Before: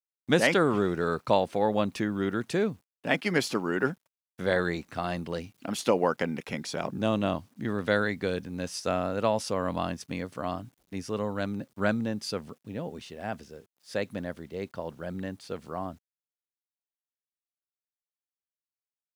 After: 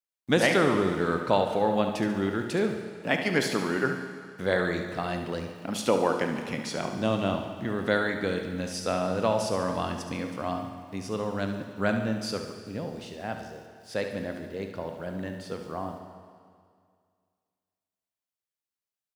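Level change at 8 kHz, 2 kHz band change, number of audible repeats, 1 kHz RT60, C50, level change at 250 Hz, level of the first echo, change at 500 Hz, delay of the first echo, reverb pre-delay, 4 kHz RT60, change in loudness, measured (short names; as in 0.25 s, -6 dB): +1.5 dB, +1.5 dB, 2, 2.1 s, 5.0 dB, +1.0 dB, -10.0 dB, +1.0 dB, 71 ms, 22 ms, 2.0 s, +1.0 dB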